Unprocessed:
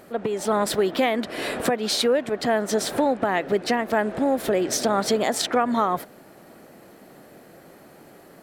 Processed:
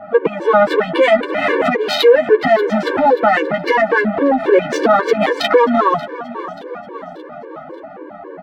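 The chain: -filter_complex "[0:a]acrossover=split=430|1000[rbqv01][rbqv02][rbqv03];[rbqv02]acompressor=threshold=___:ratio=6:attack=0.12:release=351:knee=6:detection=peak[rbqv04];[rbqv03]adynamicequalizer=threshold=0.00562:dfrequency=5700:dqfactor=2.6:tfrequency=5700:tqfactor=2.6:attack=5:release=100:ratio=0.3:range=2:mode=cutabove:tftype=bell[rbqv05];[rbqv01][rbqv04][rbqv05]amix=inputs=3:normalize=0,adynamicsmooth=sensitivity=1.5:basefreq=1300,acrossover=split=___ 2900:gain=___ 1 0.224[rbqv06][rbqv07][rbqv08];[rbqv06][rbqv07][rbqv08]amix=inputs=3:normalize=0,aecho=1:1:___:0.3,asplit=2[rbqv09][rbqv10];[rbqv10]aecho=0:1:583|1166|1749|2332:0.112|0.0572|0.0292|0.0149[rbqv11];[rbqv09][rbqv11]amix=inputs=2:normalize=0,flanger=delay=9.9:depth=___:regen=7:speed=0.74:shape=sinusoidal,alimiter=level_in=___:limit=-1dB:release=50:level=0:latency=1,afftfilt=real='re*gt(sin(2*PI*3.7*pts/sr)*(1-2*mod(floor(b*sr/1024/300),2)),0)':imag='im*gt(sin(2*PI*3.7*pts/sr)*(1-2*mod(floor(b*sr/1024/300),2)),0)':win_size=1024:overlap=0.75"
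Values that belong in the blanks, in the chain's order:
-36dB, 310, 0.141, 6.2, 3.2, 25dB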